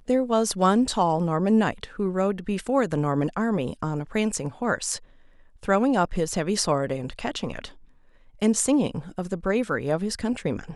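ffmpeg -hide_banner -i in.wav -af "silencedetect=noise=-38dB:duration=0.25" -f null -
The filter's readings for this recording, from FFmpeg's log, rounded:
silence_start: 4.98
silence_end: 5.63 | silence_duration: 0.65
silence_start: 7.70
silence_end: 8.41 | silence_duration: 0.71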